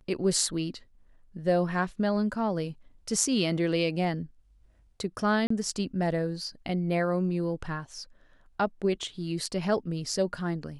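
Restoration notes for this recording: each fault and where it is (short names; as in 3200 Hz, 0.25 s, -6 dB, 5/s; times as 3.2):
5.47–5.5 gap 34 ms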